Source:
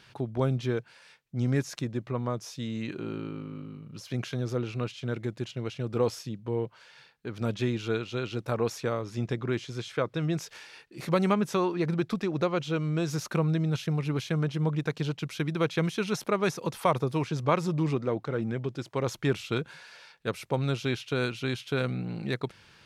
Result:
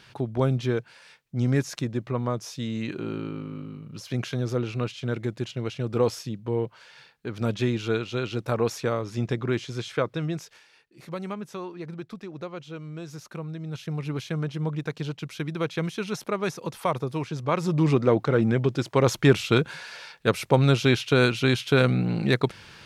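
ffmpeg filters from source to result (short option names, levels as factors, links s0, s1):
-af "volume=11.9,afade=t=out:st=9.97:d=0.66:silence=0.237137,afade=t=in:st=13.59:d=0.46:silence=0.398107,afade=t=in:st=17.49:d=0.6:silence=0.316228"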